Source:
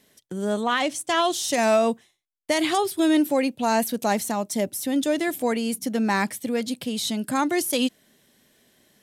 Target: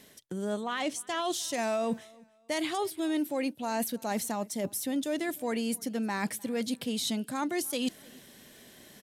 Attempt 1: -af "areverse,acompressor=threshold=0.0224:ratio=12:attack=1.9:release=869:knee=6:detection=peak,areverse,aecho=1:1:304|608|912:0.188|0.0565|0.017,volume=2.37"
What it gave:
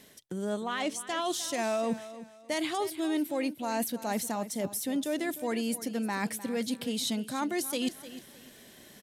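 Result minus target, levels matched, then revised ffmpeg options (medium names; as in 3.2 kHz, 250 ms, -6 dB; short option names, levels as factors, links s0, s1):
echo-to-direct +10.5 dB
-af "areverse,acompressor=threshold=0.0224:ratio=12:attack=1.9:release=869:knee=6:detection=peak,areverse,aecho=1:1:304|608:0.0562|0.0169,volume=2.37"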